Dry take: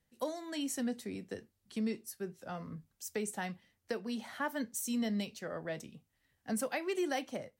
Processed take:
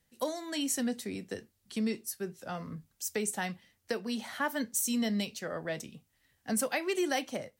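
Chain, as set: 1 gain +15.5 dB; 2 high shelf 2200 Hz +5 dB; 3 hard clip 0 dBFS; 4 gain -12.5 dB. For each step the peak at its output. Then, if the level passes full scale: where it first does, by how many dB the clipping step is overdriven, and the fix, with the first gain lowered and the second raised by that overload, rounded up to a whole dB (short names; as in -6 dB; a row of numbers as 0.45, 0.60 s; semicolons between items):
-8.0, -5.0, -5.0, -17.5 dBFS; no overload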